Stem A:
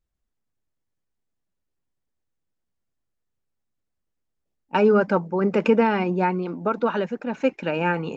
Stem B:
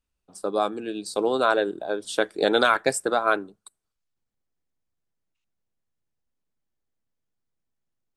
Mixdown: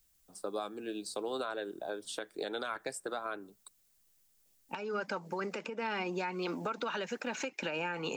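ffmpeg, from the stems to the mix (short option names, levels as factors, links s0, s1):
-filter_complex "[0:a]acompressor=threshold=0.0631:ratio=6,crystalizer=i=8.5:c=0,volume=1.19[s0];[1:a]volume=0.473[s1];[s0][s1]amix=inputs=2:normalize=0,acrossover=split=260|1400[s2][s3][s4];[s2]acompressor=threshold=0.00355:ratio=4[s5];[s3]acompressor=threshold=0.0224:ratio=4[s6];[s4]acompressor=threshold=0.0141:ratio=4[s7];[s5][s6][s7]amix=inputs=3:normalize=0,alimiter=level_in=1.19:limit=0.0631:level=0:latency=1:release=283,volume=0.841"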